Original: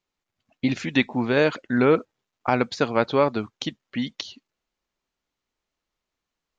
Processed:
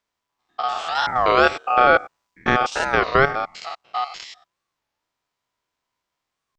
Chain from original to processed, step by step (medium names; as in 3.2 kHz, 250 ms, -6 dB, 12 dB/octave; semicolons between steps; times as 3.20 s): spectrogram pixelated in time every 100 ms; 0.96–3.31 s: tone controls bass +4 dB, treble +6 dB; ring modulator 990 Hz; warped record 33 1/3 rpm, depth 250 cents; trim +7 dB